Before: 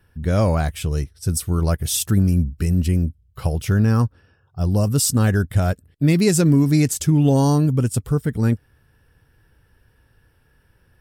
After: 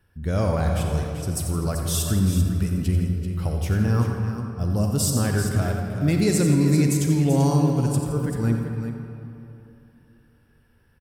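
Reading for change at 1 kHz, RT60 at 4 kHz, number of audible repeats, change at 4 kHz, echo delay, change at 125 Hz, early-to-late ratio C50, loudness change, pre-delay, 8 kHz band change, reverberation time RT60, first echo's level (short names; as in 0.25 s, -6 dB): -2.5 dB, 1.6 s, 2, -3.5 dB, 87 ms, -3.0 dB, 1.0 dB, -3.0 dB, 35 ms, -4.0 dB, 2.9 s, -10.0 dB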